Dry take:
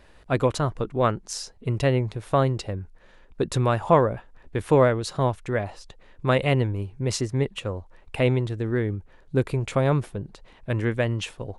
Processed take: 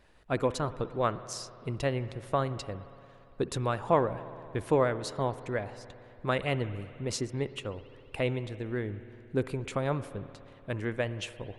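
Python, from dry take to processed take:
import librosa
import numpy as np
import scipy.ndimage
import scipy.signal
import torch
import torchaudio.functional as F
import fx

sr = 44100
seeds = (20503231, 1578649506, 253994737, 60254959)

y = fx.hpss(x, sr, part='harmonic', gain_db=-5)
y = fx.rev_spring(y, sr, rt60_s=2.9, pass_ms=(57,), chirp_ms=70, drr_db=13.5)
y = y * 10.0 ** (-5.5 / 20.0)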